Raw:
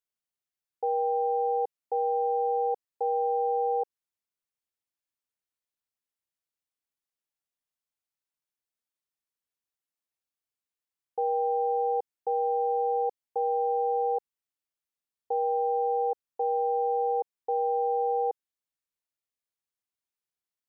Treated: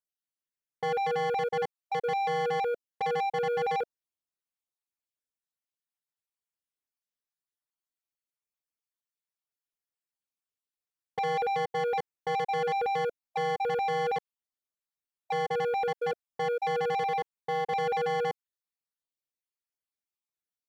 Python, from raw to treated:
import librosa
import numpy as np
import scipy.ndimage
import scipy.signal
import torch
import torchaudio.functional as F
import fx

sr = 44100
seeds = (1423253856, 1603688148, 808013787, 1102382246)

y = fx.spec_dropout(x, sr, seeds[0], share_pct=32)
y = fx.peak_eq(y, sr, hz=590.0, db=-5.5, octaves=0.54, at=(17.03, 17.73))
y = fx.leveller(y, sr, passes=2)
y = 10.0 ** (-26.0 / 20.0) * np.tanh(y / 10.0 ** (-26.0 / 20.0))